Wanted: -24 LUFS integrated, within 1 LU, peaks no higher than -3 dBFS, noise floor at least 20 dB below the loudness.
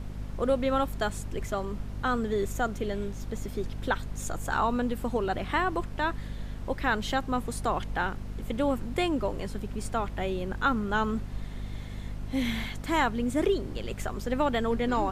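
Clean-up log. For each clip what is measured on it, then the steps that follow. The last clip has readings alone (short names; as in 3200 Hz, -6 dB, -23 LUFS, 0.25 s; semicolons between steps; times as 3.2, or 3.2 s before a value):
hum 50 Hz; harmonics up to 250 Hz; hum level -35 dBFS; noise floor -39 dBFS; noise floor target -51 dBFS; loudness -30.5 LUFS; peak -13.5 dBFS; loudness target -24.0 LUFS
-> de-hum 50 Hz, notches 5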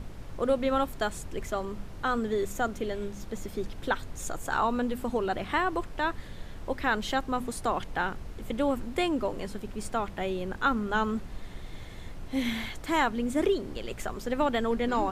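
hum none; noise floor -42 dBFS; noise floor target -51 dBFS
-> noise print and reduce 9 dB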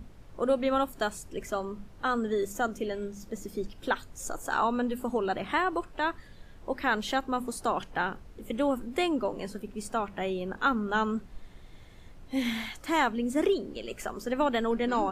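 noise floor -50 dBFS; noise floor target -51 dBFS
-> noise print and reduce 6 dB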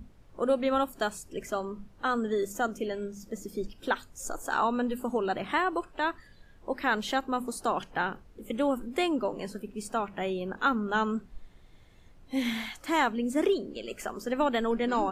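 noise floor -55 dBFS; loudness -30.5 LUFS; peak -14.0 dBFS; loudness target -24.0 LUFS
-> gain +6.5 dB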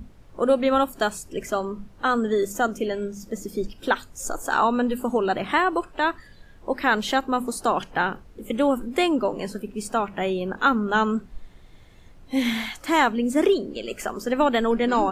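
loudness -24.0 LUFS; peak -7.5 dBFS; noise floor -49 dBFS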